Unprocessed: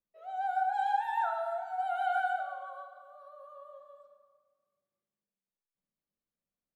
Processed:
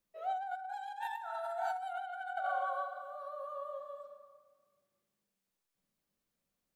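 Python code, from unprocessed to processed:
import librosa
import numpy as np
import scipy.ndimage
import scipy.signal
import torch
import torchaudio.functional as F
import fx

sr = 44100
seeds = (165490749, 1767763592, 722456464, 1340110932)

y = fx.high_shelf(x, sr, hz=3000.0, db=10.0, at=(0.69, 1.93))
y = fx.over_compress(y, sr, threshold_db=-40.0, ratio=-1.0)
y = y * 10.0 ** (1.0 / 20.0)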